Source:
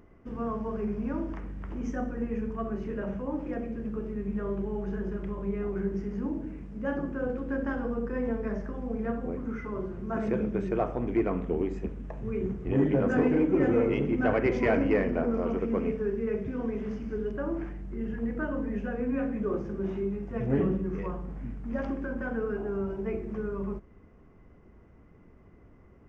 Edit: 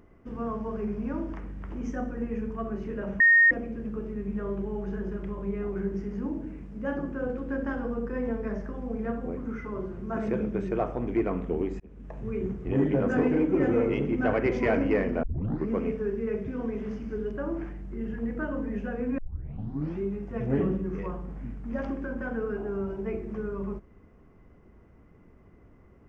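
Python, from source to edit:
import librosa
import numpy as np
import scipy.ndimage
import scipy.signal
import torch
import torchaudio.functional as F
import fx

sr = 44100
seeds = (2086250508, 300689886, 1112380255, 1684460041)

y = fx.edit(x, sr, fx.bleep(start_s=3.2, length_s=0.31, hz=1850.0, db=-14.5),
    fx.fade_in_span(start_s=11.8, length_s=0.39),
    fx.tape_start(start_s=15.23, length_s=0.48),
    fx.tape_start(start_s=19.18, length_s=0.83), tone=tone)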